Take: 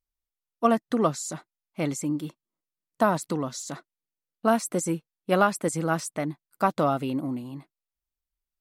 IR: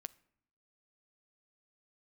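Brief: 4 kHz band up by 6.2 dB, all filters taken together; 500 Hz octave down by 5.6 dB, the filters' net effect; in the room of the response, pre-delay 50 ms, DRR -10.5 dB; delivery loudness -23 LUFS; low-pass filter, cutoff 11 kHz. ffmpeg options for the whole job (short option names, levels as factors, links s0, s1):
-filter_complex "[0:a]lowpass=11000,equalizer=f=500:t=o:g=-8,equalizer=f=4000:t=o:g=8.5,asplit=2[s0][s1];[1:a]atrim=start_sample=2205,adelay=50[s2];[s1][s2]afir=irnorm=-1:irlink=0,volume=5.62[s3];[s0][s3]amix=inputs=2:normalize=0,volume=0.596"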